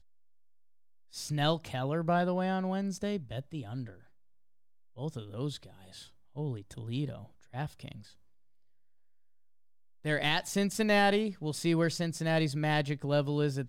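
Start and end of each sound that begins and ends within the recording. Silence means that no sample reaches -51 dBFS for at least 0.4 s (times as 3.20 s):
1.12–4.04 s
4.96–8.13 s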